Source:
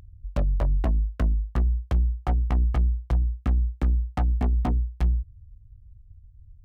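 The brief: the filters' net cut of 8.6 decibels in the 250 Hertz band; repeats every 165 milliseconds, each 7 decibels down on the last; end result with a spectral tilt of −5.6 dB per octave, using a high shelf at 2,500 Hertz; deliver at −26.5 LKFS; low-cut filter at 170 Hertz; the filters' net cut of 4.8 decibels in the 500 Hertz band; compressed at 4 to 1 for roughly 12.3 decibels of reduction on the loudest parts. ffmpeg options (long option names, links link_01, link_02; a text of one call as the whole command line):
ffmpeg -i in.wav -af "highpass=170,equalizer=frequency=250:width_type=o:gain=-8.5,equalizer=frequency=500:width_type=o:gain=-4,highshelf=frequency=2500:gain=-3.5,acompressor=threshold=-47dB:ratio=4,aecho=1:1:165|330|495|660|825:0.447|0.201|0.0905|0.0407|0.0183,volume=24dB" out.wav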